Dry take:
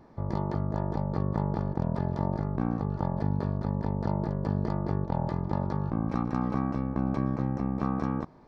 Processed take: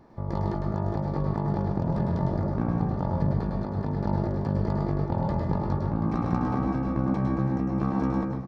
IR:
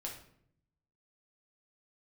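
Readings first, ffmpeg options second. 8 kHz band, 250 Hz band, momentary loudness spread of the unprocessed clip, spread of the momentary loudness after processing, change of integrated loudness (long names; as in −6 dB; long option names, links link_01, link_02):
can't be measured, +2.5 dB, 1 LU, 3 LU, +3.0 dB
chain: -filter_complex "[0:a]aecho=1:1:732:0.251,asplit=2[link_01][link_02];[1:a]atrim=start_sample=2205,adelay=104[link_03];[link_02][link_03]afir=irnorm=-1:irlink=0,volume=0dB[link_04];[link_01][link_04]amix=inputs=2:normalize=0"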